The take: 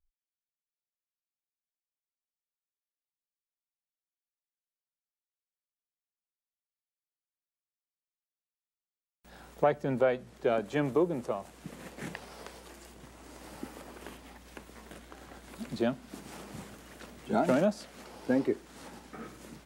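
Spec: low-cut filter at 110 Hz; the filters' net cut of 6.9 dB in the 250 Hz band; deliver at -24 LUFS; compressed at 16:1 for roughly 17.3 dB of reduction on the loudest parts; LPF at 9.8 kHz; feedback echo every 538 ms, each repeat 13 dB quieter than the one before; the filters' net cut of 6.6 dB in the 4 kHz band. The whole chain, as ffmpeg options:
-af "highpass=110,lowpass=9800,equalizer=f=250:t=o:g=-8.5,equalizer=f=4000:t=o:g=-9,acompressor=threshold=0.0112:ratio=16,aecho=1:1:538|1076|1614:0.224|0.0493|0.0108,volume=15.8"

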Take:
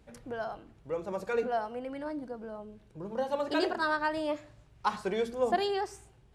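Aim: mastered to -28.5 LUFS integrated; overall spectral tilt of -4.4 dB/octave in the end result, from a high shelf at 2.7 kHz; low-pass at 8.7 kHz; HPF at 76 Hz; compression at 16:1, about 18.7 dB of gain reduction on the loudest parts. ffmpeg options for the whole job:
-af "highpass=76,lowpass=8700,highshelf=f=2700:g=8,acompressor=threshold=0.00794:ratio=16,volume=8.41"

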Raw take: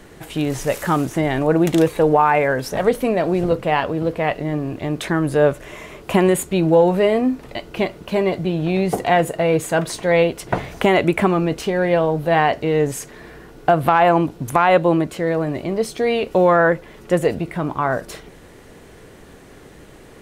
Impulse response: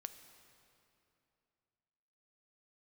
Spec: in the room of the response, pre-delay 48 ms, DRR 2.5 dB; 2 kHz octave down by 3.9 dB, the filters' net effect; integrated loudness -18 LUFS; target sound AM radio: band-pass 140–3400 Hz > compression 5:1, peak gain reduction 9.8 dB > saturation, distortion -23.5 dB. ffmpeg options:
-filter_complex "[0:a]equalizer=f=2000:t=o:g=-4.5,asplit=2[s0][s1];[1:a]atrim=start_sample=2205,adelay=48[s2];[s1][s2]afir=irnorm=-1:irlink=0,volume=1.26[s3];[s0][s3]amix=inputs=2:normalize=0,highpass=140,lowpass=3400,acompressor=threshold=0.158:ratio=5,asoftclip=threshold=0.335,volume=1.68"

